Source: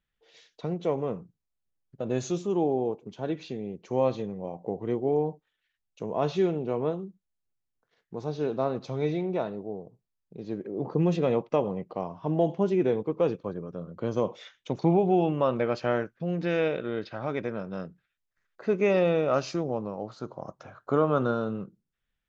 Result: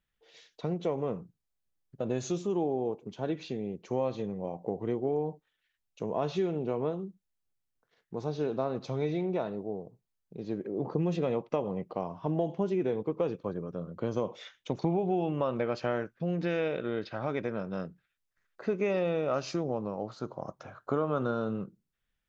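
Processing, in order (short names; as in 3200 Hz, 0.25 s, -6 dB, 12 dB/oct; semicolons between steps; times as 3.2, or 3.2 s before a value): compressor 3:1, threshold -27 dBFS, peak gain reduction 7.5 dB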